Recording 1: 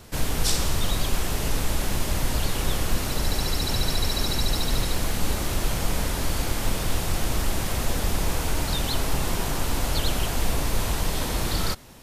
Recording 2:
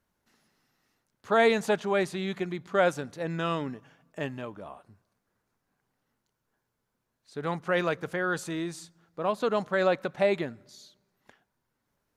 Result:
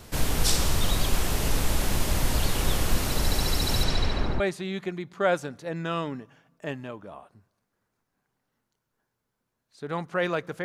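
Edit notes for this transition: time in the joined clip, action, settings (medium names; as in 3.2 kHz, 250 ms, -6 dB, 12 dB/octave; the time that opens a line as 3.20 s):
recording 1
3.83–4.40 s: low-pass 7.4 kHz -> 1.2 kHz
4.40 s: go over to recording 2 from 1.94 s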